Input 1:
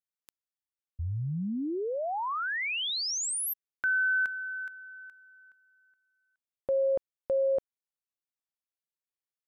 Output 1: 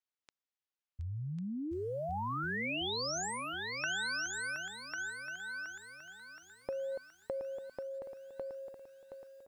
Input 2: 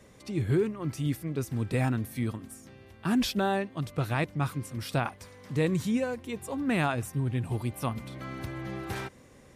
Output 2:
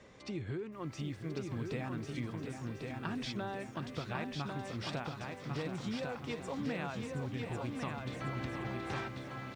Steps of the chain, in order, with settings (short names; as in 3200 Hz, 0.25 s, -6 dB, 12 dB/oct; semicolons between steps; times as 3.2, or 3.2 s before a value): Bessel low-pass 4700 Hz, order 8; low shelf 330 Hz -6.5 dB; compressor 20:1, threshold -37 dBFS; echo 1.098 s -4 dB; lo-fi delay 0.722 s, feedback 55%, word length 11-bit, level -8 dB; gain +1 dB